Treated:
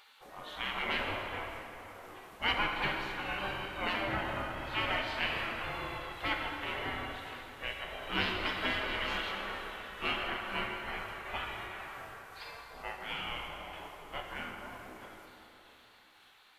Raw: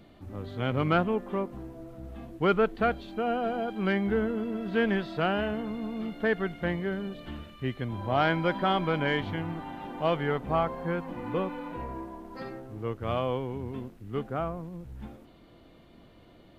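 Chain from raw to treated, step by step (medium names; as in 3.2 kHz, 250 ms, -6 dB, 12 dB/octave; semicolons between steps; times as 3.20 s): sawtooth pitch modulation -1.5 st, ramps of 564 ms; spectral gate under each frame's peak -20 dB weak; plate-style reverb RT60 3.4 s, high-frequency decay 0.65×, DRR 0.5 dB; trim +7 dB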